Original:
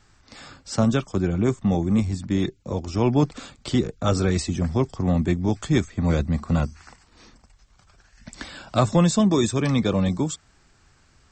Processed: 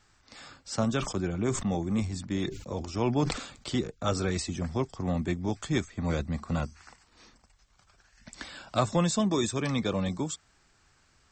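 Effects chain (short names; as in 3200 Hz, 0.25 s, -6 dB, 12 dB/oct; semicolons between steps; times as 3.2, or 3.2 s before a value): low shelf 420 Hz -5.5 dB; 0.95–3.7 sustainer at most 84 dB/s; gain -4 dB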